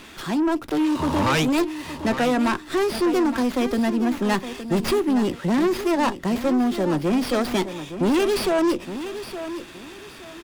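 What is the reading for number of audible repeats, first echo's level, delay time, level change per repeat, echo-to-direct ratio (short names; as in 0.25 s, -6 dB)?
2, -11.5 dB, 0.866 s, -11.0 dB, -11.0 dB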